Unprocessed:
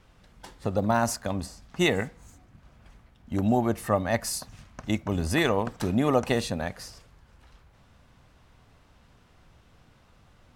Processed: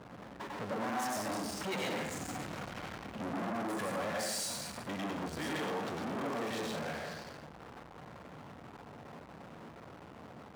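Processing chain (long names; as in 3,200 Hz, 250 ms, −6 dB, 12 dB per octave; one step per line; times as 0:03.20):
source passing by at 0:02.29, 26 m/s, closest 5.4 metres
downward compressor 6 to 1, threshold −45 dBFS, peak gain reduction 16 dB
low-pass that shuts in the quiet parts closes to 1,100 Hz, open at −49.5 dBFS
automatic gain control gain up to 5 dB
convolution reverb RT60 0.75 s, pre-delay 91 ms, DRR −2.5 dB
power curve on the samples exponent 0.35
high-pass filter 160 Hz 12 dB per octave
high-shelf EQ 7,100 Hz −5.5 dB
saturating transformer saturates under 1,000 Hz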